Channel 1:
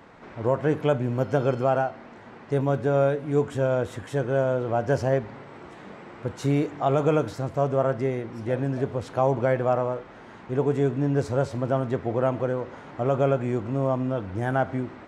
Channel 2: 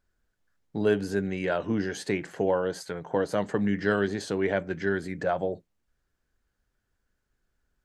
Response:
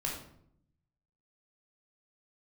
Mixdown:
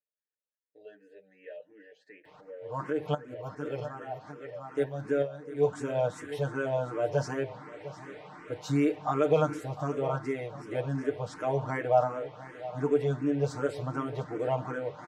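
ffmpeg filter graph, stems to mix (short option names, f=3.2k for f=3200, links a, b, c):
-filter_complex "[0:a]adelay=2250,volume=-3dB,asplit=2[a][b];[b]volume=-15.5dB[c];[1:a]asplit=3[d][e][f];[d]bandpass=f=530:t=q:w=8,volume=0dB[g];[e]bandpass=f=1.84k:t=q:w=8,volume=-6dB[h];[f]bandpass=f=2.48k:t=q:w=8,volume=-9dB[i];[g][h][i]amix=inputs=3:normalize=0,volume=-9.5dB,asplit=2[j][k];[k]apad=whole_len=763883[l];[a][l]sidechaincompress=threshold=-55dB:ratio=6:attack=8.9:release=135[m];[c]aecho=0:1:702:1[n];[m][j][n]amix=inputs=3:normalize=0,lowshelf=f=190:g=-9,aecho=1:1:6.6:0.97,asplit=2[o][p];[p]afreqshift=2.7[q];[o][q]amix=inputs=2:normalize=1"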